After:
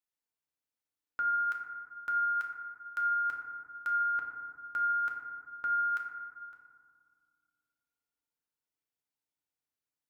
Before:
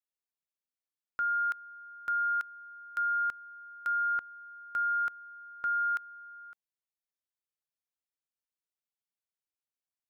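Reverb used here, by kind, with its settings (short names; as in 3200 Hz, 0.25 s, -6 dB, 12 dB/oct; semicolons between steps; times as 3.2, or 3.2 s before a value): FDN reverb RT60 2 s, low-frequency decay 1.5×, high-frequency decay 0.25×, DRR -1 dB; gain -2 dB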